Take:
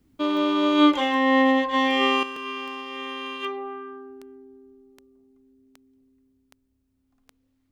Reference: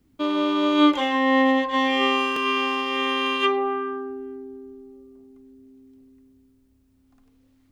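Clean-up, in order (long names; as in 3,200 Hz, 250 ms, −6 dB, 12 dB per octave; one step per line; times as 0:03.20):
click removal
level 0 dB, from 0:02.23 +9.5 dB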